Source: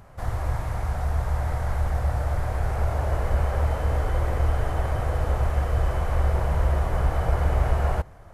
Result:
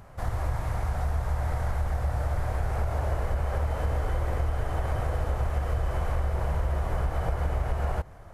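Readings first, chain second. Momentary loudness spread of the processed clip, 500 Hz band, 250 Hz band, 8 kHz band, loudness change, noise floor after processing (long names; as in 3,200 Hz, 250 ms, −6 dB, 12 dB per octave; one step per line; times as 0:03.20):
2 LU, −4.0 dB, −3.5 dB, can't be measured, −4.0 dB, −46 dBFS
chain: downward compressor, threshold −23 dBFS, peak gain reduction 8 dB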